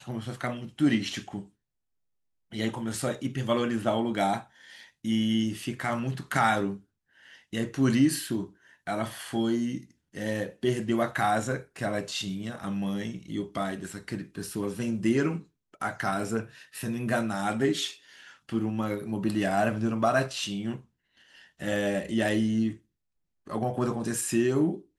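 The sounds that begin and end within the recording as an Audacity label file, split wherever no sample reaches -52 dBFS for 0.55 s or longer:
2.520000	22.790000	sound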